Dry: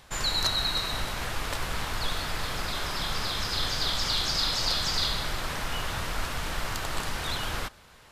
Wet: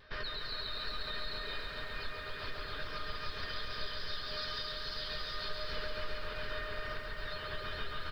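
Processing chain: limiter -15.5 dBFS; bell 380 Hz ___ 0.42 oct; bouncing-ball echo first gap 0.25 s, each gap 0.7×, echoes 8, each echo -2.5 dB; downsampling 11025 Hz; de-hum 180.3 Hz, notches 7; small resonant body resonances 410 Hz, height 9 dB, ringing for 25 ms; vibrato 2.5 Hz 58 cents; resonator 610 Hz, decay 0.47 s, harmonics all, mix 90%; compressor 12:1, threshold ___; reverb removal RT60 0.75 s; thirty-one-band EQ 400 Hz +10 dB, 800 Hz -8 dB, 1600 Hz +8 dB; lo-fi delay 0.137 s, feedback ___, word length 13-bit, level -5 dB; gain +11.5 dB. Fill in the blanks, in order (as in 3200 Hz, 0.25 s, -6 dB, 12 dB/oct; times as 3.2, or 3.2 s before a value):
-11.5 dB, -47 dBFS, 80%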